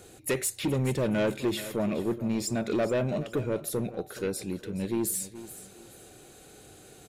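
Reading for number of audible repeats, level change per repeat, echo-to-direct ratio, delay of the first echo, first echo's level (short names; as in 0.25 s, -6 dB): 2, -11.0 dB, -14.5 dB, 0.423 s, -15.0 dB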